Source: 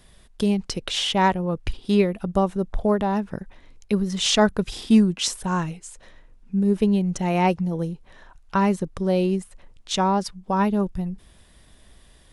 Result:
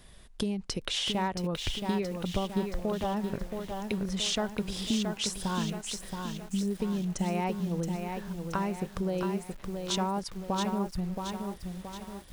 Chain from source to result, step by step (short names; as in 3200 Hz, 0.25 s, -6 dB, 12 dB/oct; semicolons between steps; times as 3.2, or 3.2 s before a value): compressor 5:1, threshold -28 dBFS, peak gain reduction 15 dB; lo-fi delay 0.674 s, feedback 55%, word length 8-bit, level -5 dB; gain -1 dB